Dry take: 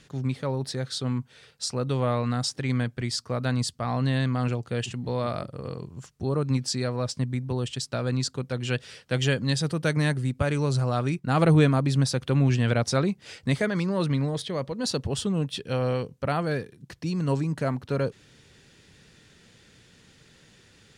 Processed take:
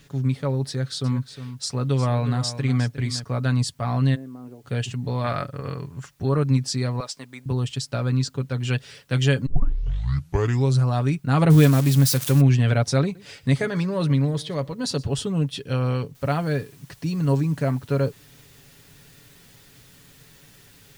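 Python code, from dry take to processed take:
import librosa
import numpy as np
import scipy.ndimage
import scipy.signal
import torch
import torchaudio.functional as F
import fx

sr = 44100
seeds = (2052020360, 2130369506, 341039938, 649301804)

y = fx.echo_single(x, sr, ms=358, db=-12.0, at=(0.68, 3.24))
y = fx.ladder_bandpass(y, sr, hz=390.0, resonance_pct=30, at=(4.14, 4.63), fade=0.02)
y = fx.peak_eq(y, sr, hz=1700.0, db=10.5, octaves=1.4, at=(5.24, 6.43))
y = fx.highpass(y, sr, hz=540.0, slope=12, at=(7.0, 7.46))
y = fx.high_shelf(y, sr, hz=7200.0, db=-7.5, at=(8.0, 8.59))
y = fx.crossing_spikes(y, sr, level_db=-18.0, at=(11.5, 12.41))
y = fx.echo_single(y, sr, ms=120, db=-21.0, at=(13.03, 15.22))
y = fx.noise_floor_step(y, sr, seeds[0], at_s=16.15, before_db=-68, after_db=-56, tilt_db=0.0)
y = fx.edit(y, sr, fx.tape_start(start_s=9.46, length_s=1.29), tone=tone)
y = fx.low_shelf(y, sr, hz=110.0, db=7.0)
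y = y + 0.48 * np.pad(y, (int(7.1 * sr / 1000.0), 0))[:len(y)]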